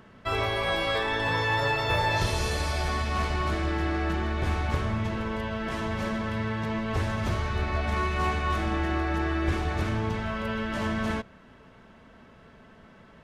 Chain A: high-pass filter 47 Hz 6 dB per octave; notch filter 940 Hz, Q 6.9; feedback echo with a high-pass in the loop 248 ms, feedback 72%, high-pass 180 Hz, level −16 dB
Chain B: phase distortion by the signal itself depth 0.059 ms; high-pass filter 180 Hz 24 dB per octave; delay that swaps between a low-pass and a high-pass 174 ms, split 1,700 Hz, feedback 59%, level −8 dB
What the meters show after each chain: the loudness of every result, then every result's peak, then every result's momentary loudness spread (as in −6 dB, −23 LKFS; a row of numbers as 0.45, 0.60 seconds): −28.5, −29.5 LKFS; −13.0, −13.5 dBFS; 6, 6 LU